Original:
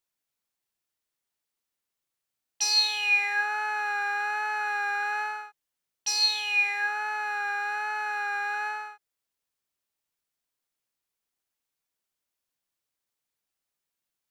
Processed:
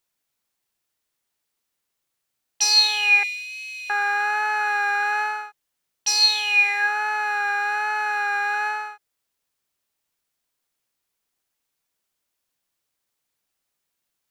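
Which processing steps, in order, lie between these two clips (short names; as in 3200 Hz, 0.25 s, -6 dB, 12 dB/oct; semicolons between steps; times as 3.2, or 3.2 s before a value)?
3.23–3.9 steep high-pass 2300 Hz 96 dB/oct; gain +6.5 dB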